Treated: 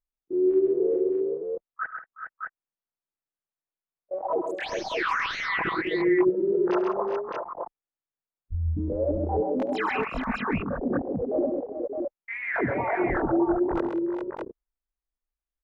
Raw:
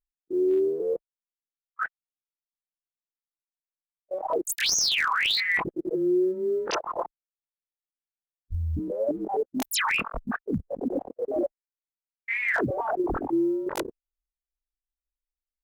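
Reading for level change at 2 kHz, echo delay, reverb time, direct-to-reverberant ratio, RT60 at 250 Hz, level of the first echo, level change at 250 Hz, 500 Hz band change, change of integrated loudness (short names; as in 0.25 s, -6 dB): -2.0 dB, 71 ms, none, none, none, -16.5 dB, +3.0 dB, +3.0 dB, 0.0 dB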